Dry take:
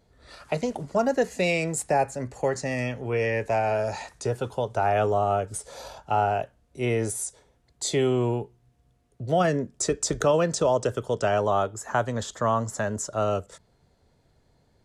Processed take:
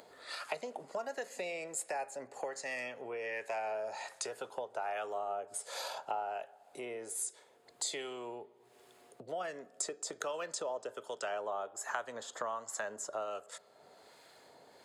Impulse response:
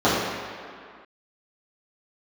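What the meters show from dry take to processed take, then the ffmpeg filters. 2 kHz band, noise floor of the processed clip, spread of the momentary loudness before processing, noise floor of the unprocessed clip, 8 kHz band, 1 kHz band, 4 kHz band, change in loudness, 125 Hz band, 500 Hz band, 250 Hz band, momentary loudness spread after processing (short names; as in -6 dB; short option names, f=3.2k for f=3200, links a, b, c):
-10.0 dB, -64 dBFS, 9 LU, -65 dBFS, -8.0 dB, -13.0 dB, -8.0 dB, -13.5 dB, -34.5 dB, -15.0 dB, -22.5 dB, 9 LU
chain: -filter_complex "[0:a]acrossover=split=1100[a][b];[a]aeval=exprs='val(0)*(1-0.5/2+0.5/2*cos(2*PI*1.3*n/s))':c=same[c];[b]aeval=exprs='val(0)*(1-0.5/2-0.5/2*cos(2*PI*1.3*n/s))':c=same[d];[c][d]amix=inputs=2:normalize=0,acompressor=threshold=-41dB:ratio=5,highpass=530,bandreject=f=5.8k:w=8.7,asplit=2[e][f];[1:a]atrim=start_sample=2205,adelay=23[g];[f][g]afir=irnorm=-1:irlink=0,volume=-43.5dB[h];[e][h]amix=inputs=2:normalize=0,acompressor=mode=upward:threshold=-56dB:ratio=2.5,volume=6dB"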